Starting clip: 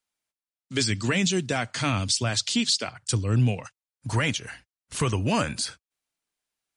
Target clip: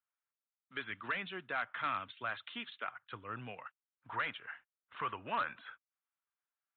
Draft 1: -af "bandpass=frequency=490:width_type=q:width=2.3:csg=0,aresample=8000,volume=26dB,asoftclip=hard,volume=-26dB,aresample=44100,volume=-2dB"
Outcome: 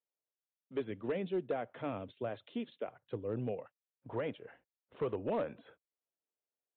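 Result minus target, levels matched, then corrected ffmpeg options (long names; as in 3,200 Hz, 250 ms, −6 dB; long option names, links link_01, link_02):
500 Hz band +11.5 dB
-af "bandpass=frequency=1300:width_type=q:width=2.3:csg=0,aresample=8000,volume=26dB,asoftclip=hard,volume=-26dB,aresample=44100,volume=-2dB"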